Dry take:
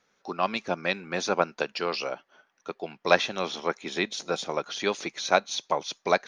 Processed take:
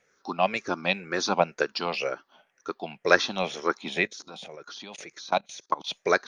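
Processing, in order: drifting ripple filter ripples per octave 0.5, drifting -2 Hz, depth 11 dB; 4.07–5.87 s: level held to a coarse grid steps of 21 dB

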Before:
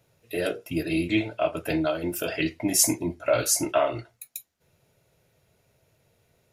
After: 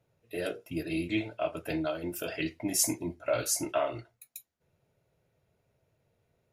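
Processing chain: tape noise reduction on one side only decoder only; trim -6.5 dB

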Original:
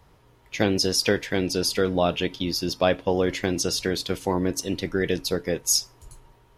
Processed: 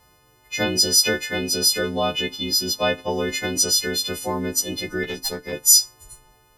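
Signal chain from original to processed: partials quantised in pitch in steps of 3 st; 5.03–5.53 s: valve stage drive 13 dB, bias 0.75; trim -1.5 dB

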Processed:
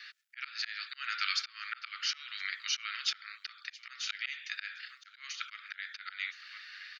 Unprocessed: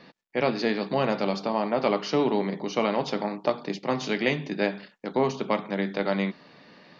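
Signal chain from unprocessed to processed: on a send: delay 1018 ms -23 dB; on the sum: slow attack 372 ms; steep high-pass 1.3 kHz 96 dB/octave; trim +7.5 dB

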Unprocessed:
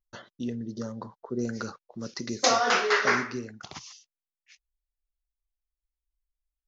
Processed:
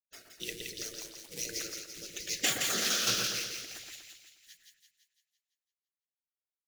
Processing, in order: companded quantiser 6-bit; FFT filter 210 Hz 0 dB, 660 Hz -10 dB, 980 Hz -26 dB, 2.2 kHz +9 dB; spectral gate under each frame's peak -15 dB weak; rotary cabinet horn 5.5 Hz; two-band feedback delay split 1.8 kHz, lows 120 ms, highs 169 ms, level -4 dB; trim +4.5 dB

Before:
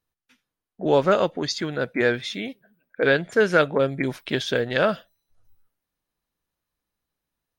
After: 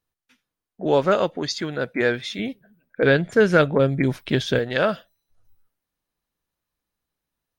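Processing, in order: 2.39–4.59 s: bass shelf 220 Hz +11.5 dB

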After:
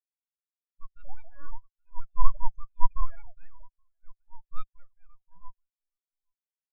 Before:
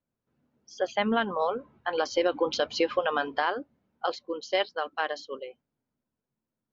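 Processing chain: formants replaced by sine waves; peaking EQ 280 Hz +11 dB 2.2 oct; delay 823 ms -18.5 dB; full-wave rectifier; transient shaper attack -11 dB, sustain +2 dB; spectral contrast expander 2.5:1; trim +8 dB

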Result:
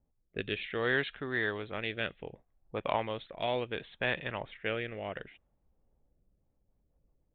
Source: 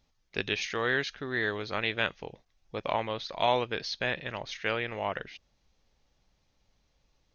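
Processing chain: resampled via 8 kHz; level-controlled noise filter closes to 640 Hz, open at -26.5 dBFS; rotary cabinet horn 0.65 Hz, later 7 Hz, at 6.11 s

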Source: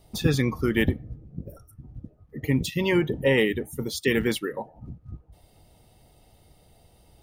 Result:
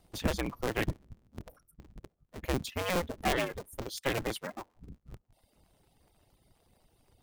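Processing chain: cycle switcher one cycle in 2, inverted; reverb removal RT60 0.84 s; trim -8 dB

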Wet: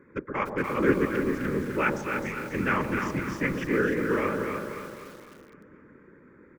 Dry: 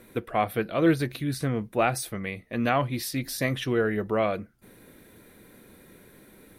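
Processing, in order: local Wiener filter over 15 samples; high-pass 310 Hz 12 dB/octave; treble shelf 3.9 kHz -9 dB; whisper effect; in parallel at -11.5 dB: saturation -26 dBFS, distortion -9 dB; on the sum: static phaser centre 1.7 kHz, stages 4; on a send: echo whose repeats swap between lows and highs 128 ms, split 840 Hz, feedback 73%, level -4.5 dB; on the sum: resampled via 16 kHz; bit-crushed delay 297 ms, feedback 35%, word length 8-bit, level -6.5 dB; trim +4 dB

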